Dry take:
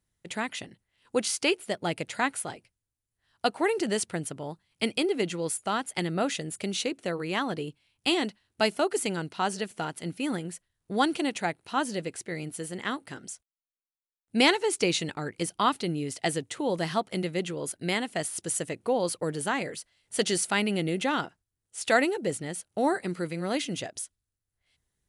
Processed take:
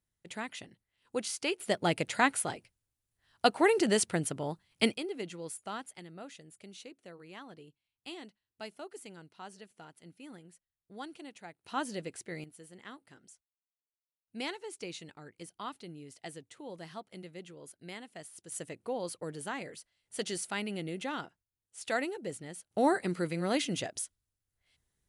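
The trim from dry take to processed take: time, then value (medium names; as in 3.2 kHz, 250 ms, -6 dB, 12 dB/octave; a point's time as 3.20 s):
-7.5 dB
from 1.60 s +1 dB
from 4.94 s -11 dB
from 5.96 s -19 dB
from 11.64 s -6.5 dB
from 12.44 s -16.5 dB
from 18.52 s -9.5 dB
from 22.71 s -1 dB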